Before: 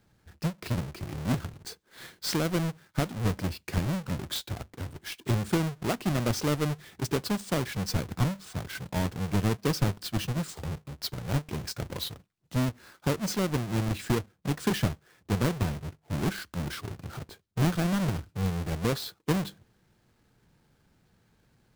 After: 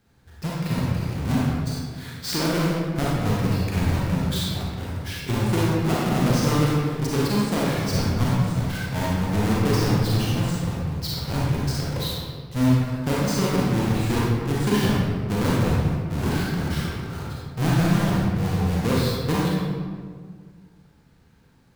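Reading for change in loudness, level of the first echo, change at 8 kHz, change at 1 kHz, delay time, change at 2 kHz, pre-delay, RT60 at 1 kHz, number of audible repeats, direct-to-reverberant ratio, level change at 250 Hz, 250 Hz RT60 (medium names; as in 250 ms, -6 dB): +7.5 dB, no echo, +4.5 dB, +8.0 dB, no echo, +6.5 dB, 32 ms, 1.7 s, no echo, -6.0 dB, +8.0 dB, 2.3 s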